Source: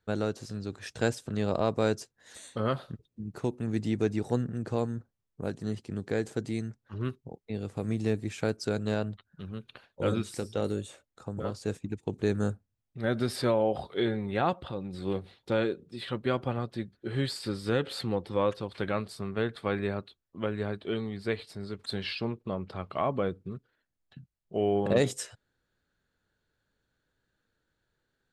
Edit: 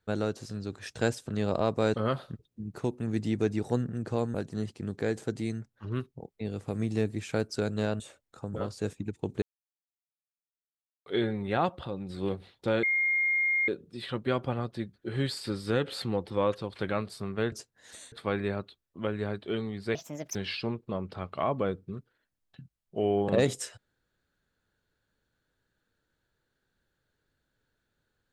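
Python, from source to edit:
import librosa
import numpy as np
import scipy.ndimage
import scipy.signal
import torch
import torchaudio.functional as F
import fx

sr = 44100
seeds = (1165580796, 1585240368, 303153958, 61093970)

y = fx.edit(x, sr, fx.move(start_s=1.94, length_s=0.6, to_s=19.51),
    fx.cut(start_s=4.94, length_s=0.49),
    fx.cut(start_s=9.09, length_s=1.75),
    fx.silence(start_s=12.26, length_s=1.64),
    fx.insert_tone(at_s=15.67, length_s=0.85, hz=2130.0, db=-23.5),
    fx.speed_span(start_s=21.34, length_s=0.59, speed=1.47), tone=tone)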